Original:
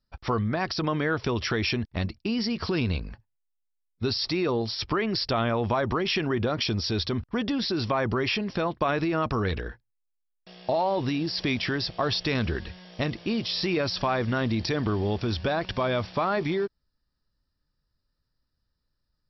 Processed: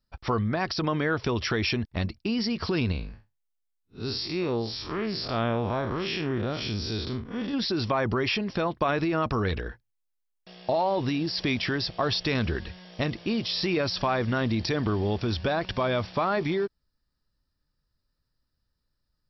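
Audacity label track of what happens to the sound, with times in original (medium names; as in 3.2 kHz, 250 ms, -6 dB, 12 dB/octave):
2.920000	7.540000	spectral blur width 117 ms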